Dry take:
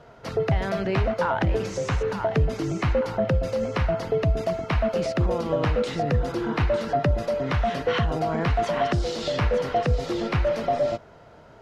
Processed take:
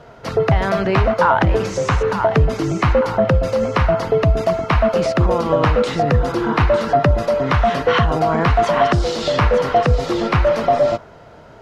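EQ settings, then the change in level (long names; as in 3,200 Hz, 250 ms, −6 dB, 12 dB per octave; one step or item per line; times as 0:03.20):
dynamic equaliser 1,100 Hz, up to +6 dB, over −40 dBFS, Q 1.6
+7.0 dB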